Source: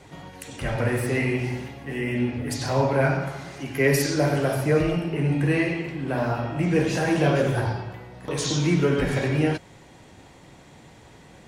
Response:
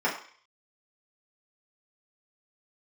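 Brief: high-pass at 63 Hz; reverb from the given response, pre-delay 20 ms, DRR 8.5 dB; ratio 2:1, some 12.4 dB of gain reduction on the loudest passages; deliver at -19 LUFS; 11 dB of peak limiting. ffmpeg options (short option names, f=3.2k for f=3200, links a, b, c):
-filter_complex "[0:a]highpass=63,acompressor=threshold=-40dB:ratio=2,alimiter=level_in=7.5dB:limit=-24dB:level=0:latency=1,volume=-7.5dB,asplit=2[a][b];[1:a]atrim=start_sample=2205,adelay=20[c];[b][c]afir=irnorm=-1:irlink=0,volume=-21dB[d];[a][d]amix=inputs=2:normalize=0,volume=21.5dB"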